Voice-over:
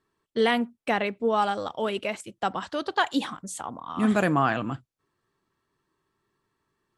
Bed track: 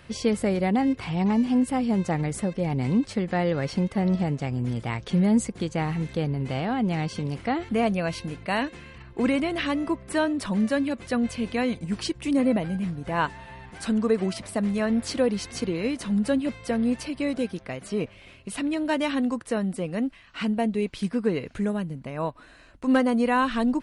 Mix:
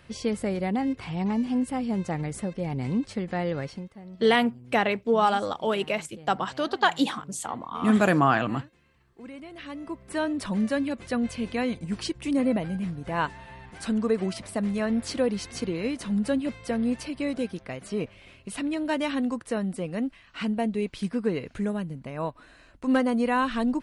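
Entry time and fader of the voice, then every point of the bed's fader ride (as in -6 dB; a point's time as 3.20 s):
3.85 s, +2.0 dB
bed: 3.60 s -4 dB
3.98 s -20.5 dB
9.22 s -20.5 dB
10.32 s -2 dB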